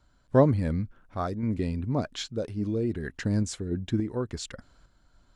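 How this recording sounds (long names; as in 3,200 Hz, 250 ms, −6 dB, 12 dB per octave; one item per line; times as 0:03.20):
sample-and-hold tremolo
AAC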